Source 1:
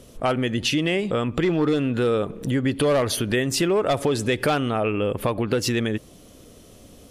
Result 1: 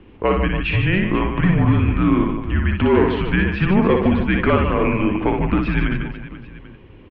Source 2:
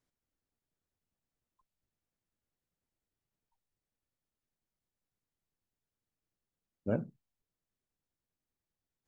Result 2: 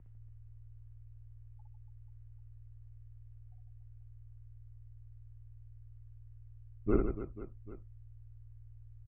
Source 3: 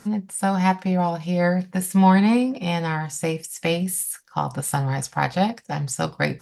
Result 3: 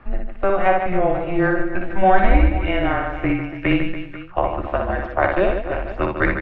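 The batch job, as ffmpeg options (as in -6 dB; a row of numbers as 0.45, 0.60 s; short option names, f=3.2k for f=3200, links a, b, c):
-af "aeval=exprs='val(0)+0.00398*(sin(2*PI*60*n/s)+sin(2*PI*2*60*n/s)/2+sin(2*PI*3*60*n/s)/3+sin(2*PI*4*60*n/s)/4+sin(2*PI*5*60*n/s)/5)':c=same,aecho=1:1:60|150|285|487.5|791.2:0.631|0.398|0.251|0.158|0.1,highpass=f=180:t=q:w=0.5412,highpass=f=180:t=q:w=1.307,lowpass=f=2.9k:t=q:w=0.5176,lowpass=f=2.9k:t=q:w=0.7071,lowpass=f=2.9k:t=q:w=1.932,afreqshift=-190,volume=4dB"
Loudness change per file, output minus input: +4.5, -0.5, +2.0 LU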